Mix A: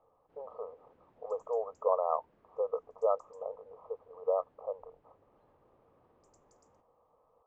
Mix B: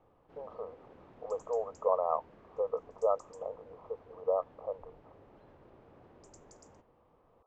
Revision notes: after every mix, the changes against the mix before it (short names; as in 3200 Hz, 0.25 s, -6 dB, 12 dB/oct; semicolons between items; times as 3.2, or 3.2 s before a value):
background +11.0 dB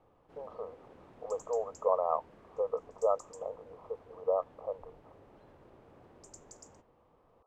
master: remove air absorption 88 m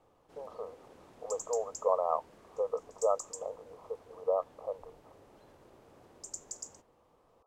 master: add tone controls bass -3 dB, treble +13 dB